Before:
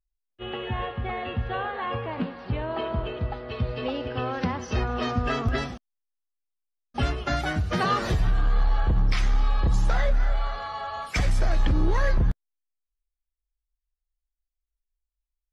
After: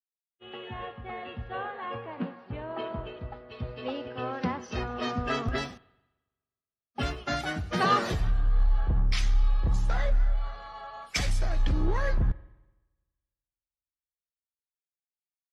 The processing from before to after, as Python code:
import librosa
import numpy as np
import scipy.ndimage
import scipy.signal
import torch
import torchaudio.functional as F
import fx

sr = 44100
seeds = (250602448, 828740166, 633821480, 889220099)

y = fx.rev_spring(x, sr, rt60_s=3.8, pass_ms=(42, 57), chirp_ms=40, drr_db=19.0)
y = fx.quant_float(y, sr, bits=6, at=(5.55, 7.19))
y = fx.band_widen(y, sr, depth_pct=100)
y = y * 10.0 ** (-4.5 / 20.0)